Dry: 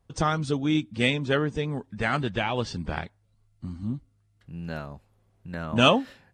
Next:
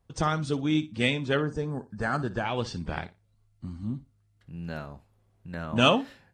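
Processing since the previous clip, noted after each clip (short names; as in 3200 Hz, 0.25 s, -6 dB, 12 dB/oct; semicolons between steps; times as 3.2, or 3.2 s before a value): spectral gain 1.38–2.45, 1800–4100 Hz -13 dB; flutter echo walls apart 10 m, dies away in 0.22 s; gain -2 dB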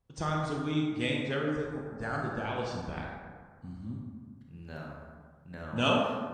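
reverb RT60 1.8 s, pre-delay 23 ms, DRR -1 dB; gain -8 dB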